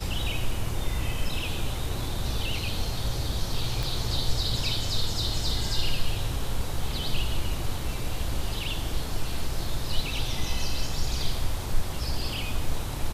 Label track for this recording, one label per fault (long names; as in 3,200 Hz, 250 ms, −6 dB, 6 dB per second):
3.830000	3.830000	click